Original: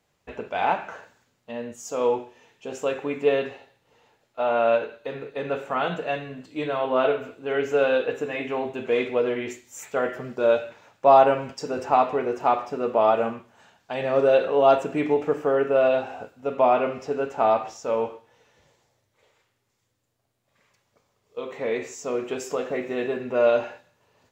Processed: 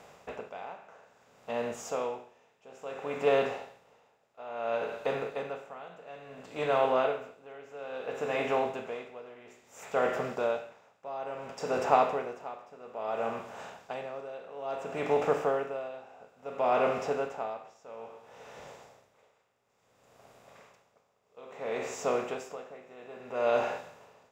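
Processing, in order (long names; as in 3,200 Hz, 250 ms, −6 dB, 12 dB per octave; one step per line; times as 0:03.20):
compressor on every frequency bin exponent 0.6
parametric band 310 Hz −8.5 dB 0.29 octaves
tremolo with a sine in dB 0.59 Hz, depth 21 dB
level −6 dB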